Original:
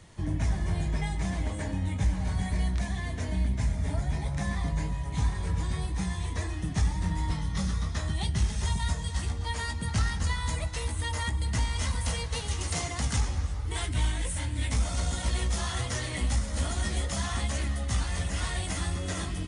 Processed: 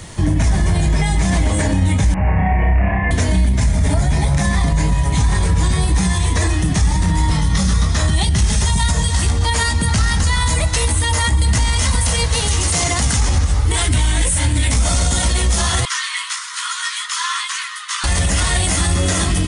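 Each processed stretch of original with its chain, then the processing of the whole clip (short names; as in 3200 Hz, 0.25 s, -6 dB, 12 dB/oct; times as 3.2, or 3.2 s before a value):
2.14–3.11 rippled Chebyshev low-pass 2800 Hz, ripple 6 dB + flutter echo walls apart 5.3 m, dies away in 0.8 s
15.85–18.04 rippled Chebyshev high-pass 980 Hz, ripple 3 dB + high shelf 5200 Hz -12 dB
whole clip: high shelf 6800 Hz +8 dB; maximiser +24.5 dB; gain -6.5 dB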